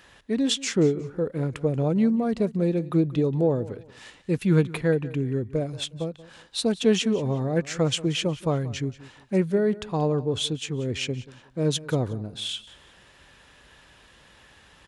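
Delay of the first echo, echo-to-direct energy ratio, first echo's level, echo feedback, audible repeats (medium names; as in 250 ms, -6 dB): 181 ms, -18.0 dB, -18.5 dB, 28%, 2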